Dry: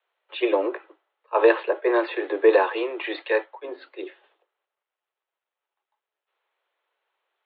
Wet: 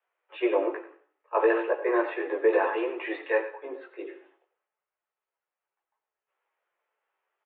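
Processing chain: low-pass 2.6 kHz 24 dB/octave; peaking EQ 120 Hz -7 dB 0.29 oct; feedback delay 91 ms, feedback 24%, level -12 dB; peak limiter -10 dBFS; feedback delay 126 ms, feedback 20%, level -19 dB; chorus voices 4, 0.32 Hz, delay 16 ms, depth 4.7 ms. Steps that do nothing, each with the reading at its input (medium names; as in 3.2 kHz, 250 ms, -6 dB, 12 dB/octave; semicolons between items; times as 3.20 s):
peaking EQ 120 Hz: input has nothing below 290 Hz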